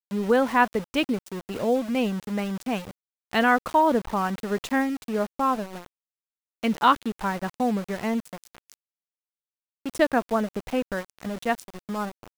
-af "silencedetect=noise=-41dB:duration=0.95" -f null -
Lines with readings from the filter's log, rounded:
silence_start: 8.74
silence_end: 9.86 | silence_duration: 1.12